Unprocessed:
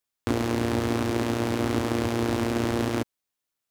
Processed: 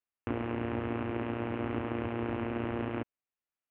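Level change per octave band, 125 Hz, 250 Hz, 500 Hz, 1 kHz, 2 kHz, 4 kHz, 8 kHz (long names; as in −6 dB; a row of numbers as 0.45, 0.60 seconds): −8.5 dB, −8.5 dB, −8.0 dB, −7.5 dB, −8.0 dB, −16.0 dB, below −40 dB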